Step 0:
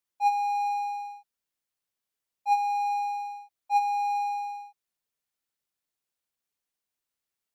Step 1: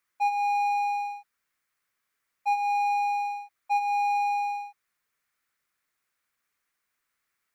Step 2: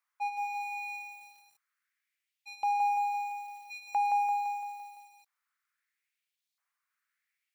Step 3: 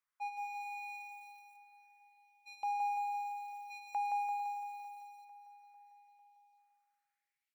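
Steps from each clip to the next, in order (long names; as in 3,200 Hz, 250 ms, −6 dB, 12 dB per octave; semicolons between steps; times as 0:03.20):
flat-topped bell 1,600 Hz +10 dB 1.3 octaves; downward compressor 5 to 1, threshold −29 dBFS, peak gain reduction 9 dB; level +5 dB
auto-filter high-pass saw up 0.76 Hz 830–4,100 Hz; feedback echo at a low word length 170 ms, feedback 55%, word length 8 bits, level −5 dB; level −8 dB
repeating echo 449 ms, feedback 57%, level −16.5 dB; level −7 dB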